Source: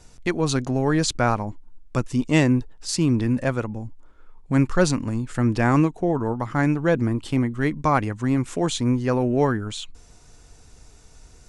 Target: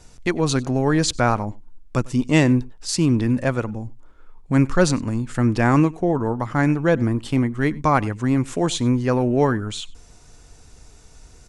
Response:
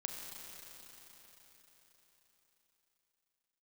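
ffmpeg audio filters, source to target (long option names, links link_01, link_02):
-af "aecho=1:1:96:0.0668,volume=2dB"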